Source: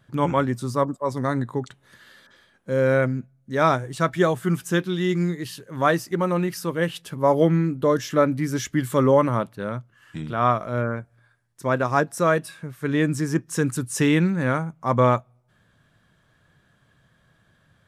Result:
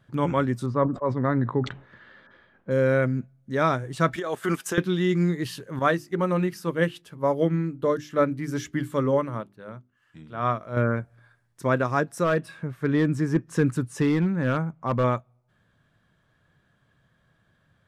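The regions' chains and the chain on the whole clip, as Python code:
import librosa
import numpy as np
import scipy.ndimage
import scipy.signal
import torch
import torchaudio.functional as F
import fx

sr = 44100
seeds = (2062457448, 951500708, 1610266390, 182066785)

y = fx.chain(x, sr, fx.lowpass(hz=2200.0, slope=12),
    fx.sustainer(db_per_s=130.0), at=(0.66, 2.71))
y = fx.chain(y, sr, fx.highpass(hz=400.0, slope=12),
    fx.over_compress(threshold_db=-28.0, ratio=-1.0),
    fx.transient(attack_db=-4, sustain_db=-9), at=(4.16, 4.78))
y = fx.chain(y, sr, fx.hum_notches(base_hz=50, count=8),
    fx.upward_expand(threshold_db=-32.0, expansion=1.5), at=(5.79, 10.77))
y = fx.chain(y, sr, fx.high_shelf(hz=3800.0, db=-9.5),
    fx.clip_hard(threshold_db=-14.0), at=(12.24, 15.04))
y = fx.high_shelf(y, sr, hz=4600.0, db=-6.0)
y = fx.rider(y, sr, range_db=5, speed_s=0.5)
y = fx.dynamic_eq(y, sr, hz=820.0, q=1.7, threshold_db=-33.0, ratio=4.0, max_db=-4)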